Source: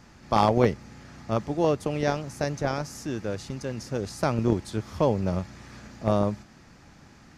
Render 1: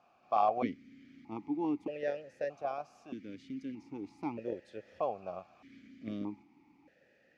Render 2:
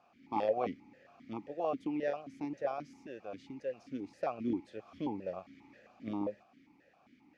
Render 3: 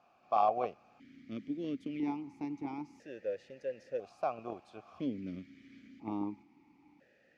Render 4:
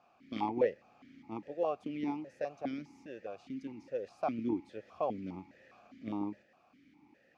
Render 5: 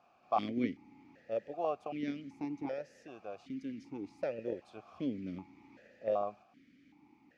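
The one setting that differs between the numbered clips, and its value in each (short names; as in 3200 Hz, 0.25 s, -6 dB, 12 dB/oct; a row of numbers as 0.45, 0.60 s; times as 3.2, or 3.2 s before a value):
vowel sequencer, rate: 1.6, 7.5, 1, 4.9, 2.6 Hz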